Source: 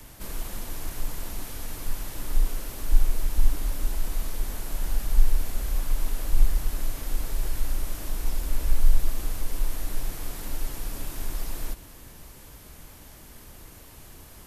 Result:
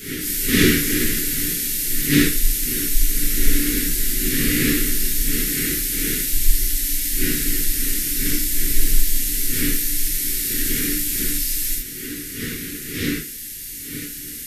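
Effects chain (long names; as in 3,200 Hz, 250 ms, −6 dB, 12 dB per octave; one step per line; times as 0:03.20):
wind on the microphone 640 Hz −28 dBFS
Chebyshev band-stop filter 310–1,900 Hz, order 3
bass and treble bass −14 dB, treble +7 dB
0:05.12–0:06.26: high-pass filter 55 Hz 6 dB per octave
reverb whose tail is shaped and stops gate 110 ms flat, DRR −7 dB
level +5 dB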